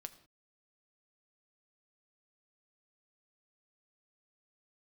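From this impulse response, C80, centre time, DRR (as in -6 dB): 16.5 dB, 6 ms, 9.0 dB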